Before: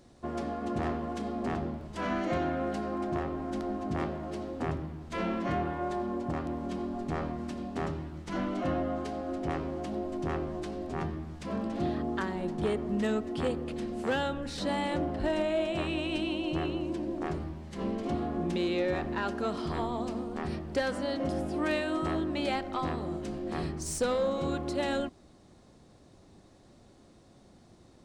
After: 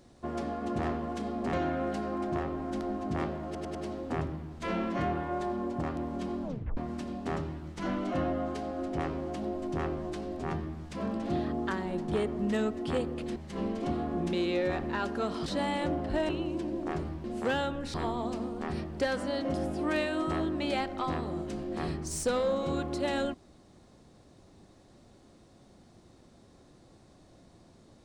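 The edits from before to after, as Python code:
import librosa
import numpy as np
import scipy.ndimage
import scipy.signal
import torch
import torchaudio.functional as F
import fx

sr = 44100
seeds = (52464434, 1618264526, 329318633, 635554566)

y = fx.edit(x, sr, fx.cut(start_s=1.53, length_s=0.8),
    fx.stutter(start_s=4.25, slice_s=0.1, count=4),
    fx.tape_stop(start_s=6.93, length_s=0.34),
    fx.swap(start_s=13.86, length_s=0.7, other_s=17.59, other_length_s=2.1),
    fx.cut(start_s=15.39, length_s=1.25), tone=tone)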